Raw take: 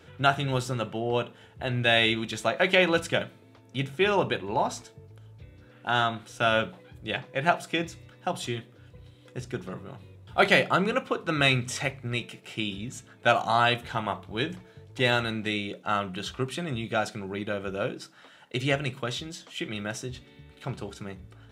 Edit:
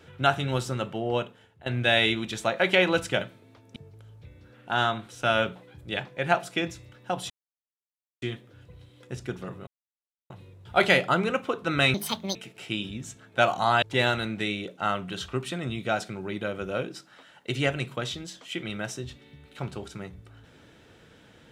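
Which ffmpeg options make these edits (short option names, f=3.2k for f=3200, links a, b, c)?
-filter_complex "[0:a]asplit=8[a][b][c][d][e][f][g][h];[a]atrim=end=1.66,asetpts=PTS-STARTPTS,afade=t=out:st=1.16:d=0.5:silence=0.133352[i];[b]atrim=start=1.66:end=3.762,asetpts=PTS-STARTPTS,afade=t=in:d=0.004:c=hsin:silence=0.133352[j];[c]atrim=start=4.928:end=8.47,asetpts=PTS-STARTPTS,afade=t=out:st=3.538:d=0.004:c=hsin,apad=pad_dur=0.92[k];[d]atrim=start=8.47:end=9.92,asetpts=PTS-STARTPTS,afade=t=in:d=0.004:c=hsin,afade=t=out:st=1.446:d=0.004:c=hsin,apad=pad_dur=0.63[l];[e]atrim=start=9.92:end=11.564,asetpts=PTS-STARTPTS,afade=t=in:d=0.004:c=hsin[m];[f]atrim=start=11.56:end=12.23,asetpts=PTS-STARTPTS,asetrate=71442,aresample=44100[n];[g]atrim=start=12.226:end=13.702[o];[h]atrim=start=14.878[p];[i][j]concat=n=2:v=0:a=1[q];[k][l][m]concat=n=3:v=0:a=1[r];[q][r]acrossfade=d=0.004:c1=hsin:c2=hsin[s];[s][n]acrossfade=d=0.004:c1=hsin:c2=hsin[t];[t][o]acrossfade=d=0.004:c1=hsin:c2=hsin[u];[u][p]acrossfade=d=0.004:c1=hsin:c2=hsin"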